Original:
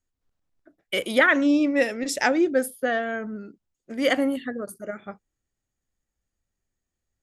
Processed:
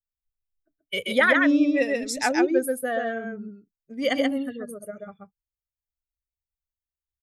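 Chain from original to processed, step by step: per-bin expansion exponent 1.5; echo 0.132 s -3 dB

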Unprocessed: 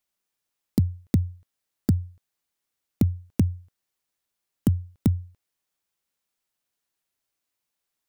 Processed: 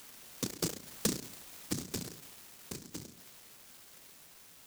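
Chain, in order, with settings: delta modulation 32 kbps, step -38 dBFS; Doppler pass-by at 1.88, 17 m/s, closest 16 m; upward compressor, threshold -41 dBFS; LPF 2100 Hz; reverb RT60 1.2 s, pre-delay 58 ms, DRR 5.5 dB; LPC vocoder at 8 kHz whisper; low shelf 360 Hz -10 dB; speed mistake 45 rpm record played at 78 rpm; HPF 150 Hz 12 dB/oct; noise-modulated delay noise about 5900 Hz, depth 0.37 ms

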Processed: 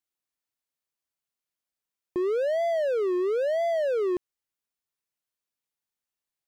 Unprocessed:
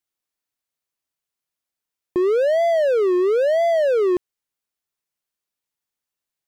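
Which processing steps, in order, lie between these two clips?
limiter -16 dBFS, peak gain reduction 3.5 dB; gain -4.5 dB

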